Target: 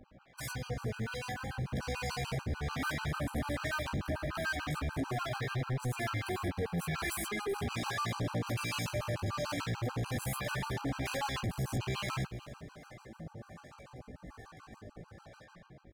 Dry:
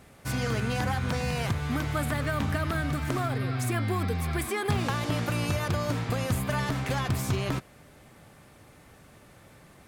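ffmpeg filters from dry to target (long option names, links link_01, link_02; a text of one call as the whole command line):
ffmpeg -i in.wav -filter_complex "[0:a]bandreject=frequency=60:width_type=h:width=6,bandreject=frequency=120:width_type=h:width=6,bandreject=frequency=180:width_type=h:width=6,bandreject=frequency=240:width_type=h:width=6,bandreject=frequency=300:width_type=h:width=6,bandreject=frequency=360:width_type=h:width=6,bandreject=frequency=420:width_type=h:width=6,bandreject=frequency=480:width_type=h:width=6,afftfilt=real='re*gte(hypot(re,im),0.00282)':imag='im*gte(hypot(re,im),0.00282)':win_size=1024:overlap=0.75,asplit=2[link_01][link_02];[link_02]acompressor=threshold=-37dB:ratio=12,volume=-1.5dB[link_03];[link_01][link_03]amix=inputs=2:normalize=0,alimiter=limit=-19.5dB:level=0:latency=1:release=188,dynaudnorm=framelen=840:gausssize=3:maxgain=9dB,acrusher=bits=7:mix=0:aa=0.5,atempo=0.62,acrossover=split=670[link_04][link_05];[link_04]aeval=exprs='val(0)*(1-0.7/2+0.7/2*cos(2*PI*1.2*n/s))':channel_layout=same[link_06];[link_05]aeval=exprs='val(0)*(1-0.7/2-0.7/2*cos(2*PI*1.2*n/s))':channel_layout=same[link_07];[link_06][link_07]amix=inputs=2:normalize=0,flanger=delay=16:depth=2.3:speed=0.5,asoftclip=type=hard:threshold=-30.5dB,aecho=1:1:381|762|1143:0.141|0.048|0.0163,afftfilt=real='re*gt(sin(2*PI*6.8*pts/sr)*(1-2*mod(floor(b*sr/1024/800),2)),0)':imag='im*gt(sin(2*PI*6.8*pts/sr)*(1-2*mod(floor(b*sr/1024/800),2)),0)':win_size=1024:overlap=0.75" out.wav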